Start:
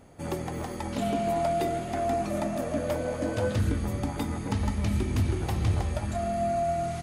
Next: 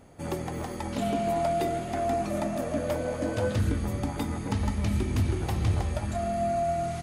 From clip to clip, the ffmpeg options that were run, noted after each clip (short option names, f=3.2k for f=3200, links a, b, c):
-af anull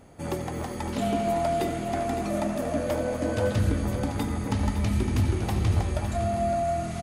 -af "aecho=1:1:88|559:0.188|0.316,volume=1.5dB"